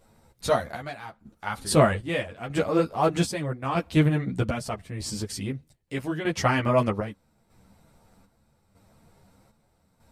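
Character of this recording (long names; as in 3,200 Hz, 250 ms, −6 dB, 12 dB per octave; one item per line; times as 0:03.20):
chopped level 0.8 Hz, depth 60%, duty 60%
a shimmering, thickened sound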